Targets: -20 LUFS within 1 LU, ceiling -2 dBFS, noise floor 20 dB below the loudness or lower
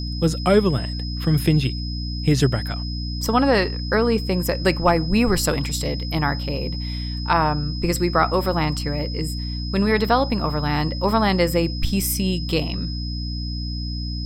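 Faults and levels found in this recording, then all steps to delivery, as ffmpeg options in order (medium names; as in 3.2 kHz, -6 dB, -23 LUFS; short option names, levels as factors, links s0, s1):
hum 60 Hz; highest harmonic 300 Hz; hum level -25 dBFS; steady tone 5.1 kHz; tone level -33 dBFS; loudness -22.0 LUFS; peak level -4.5 dBFS; loudness target -20.0 LUFS
-> -af "bandreject=f=60:t=h:w=6,bandreject=f=120:t=h:w=6,bandreject=f=180:t=h:w=6,bandreject=f=240:t=h:w=6,bandreject=f=300:t=h:w=6"
-af "bandreject=f=5100:w=30"
-af "volume=1.26"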